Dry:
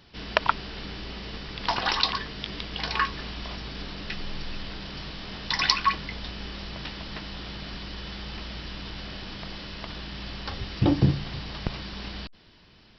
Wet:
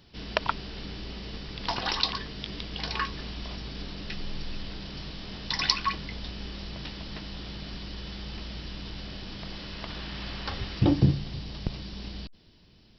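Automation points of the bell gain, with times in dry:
bell 1400 Hz 2.5 oct
9.26 s -6 dB
10.09 s +1 dB
10.61 s +1 dB
11.27 s -10.5 dB

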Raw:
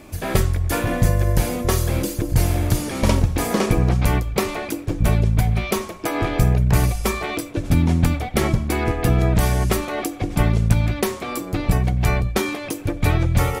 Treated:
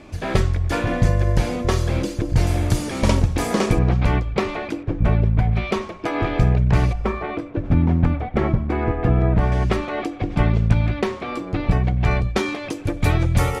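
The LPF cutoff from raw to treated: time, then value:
5300 Hz
from 2.47 s 8700 Hz
from 3.79 s 3600 Hz
from 4.83 s 2200 Hz
from 5.53 s 3700 Hz
from 6.93 s 1700 Hz
from 9.52 s 3400 Hz
from 12.11 s 5700 Hz
from 12.85 s 11000 Hz

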